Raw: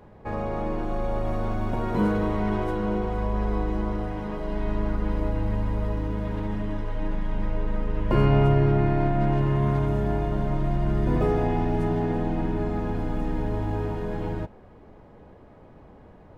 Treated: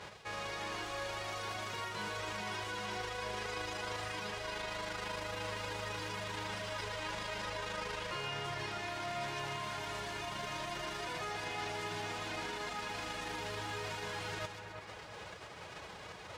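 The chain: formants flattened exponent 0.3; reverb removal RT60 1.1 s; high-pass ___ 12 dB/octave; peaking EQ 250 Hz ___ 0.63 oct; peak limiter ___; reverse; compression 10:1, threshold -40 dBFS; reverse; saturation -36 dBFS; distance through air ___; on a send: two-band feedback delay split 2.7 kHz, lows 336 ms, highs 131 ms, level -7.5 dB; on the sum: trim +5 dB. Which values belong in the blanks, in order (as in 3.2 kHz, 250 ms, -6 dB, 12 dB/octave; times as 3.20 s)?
75 Hz, -11.5 dB, -15 dBFS, 99 m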